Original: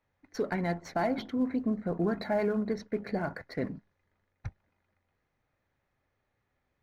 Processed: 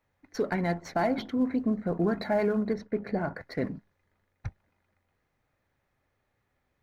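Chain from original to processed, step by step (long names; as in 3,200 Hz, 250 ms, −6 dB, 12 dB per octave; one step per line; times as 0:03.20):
0:02.73–0:03.41: high-shelf EQ 2,800 Hz −8.5 dB
level +2.5 dB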